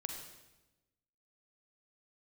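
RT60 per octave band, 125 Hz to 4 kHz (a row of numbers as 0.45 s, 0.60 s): 1.4 s, 1.3 s, 1.1 s, 0.95 s, 0.95 s, 0.90 s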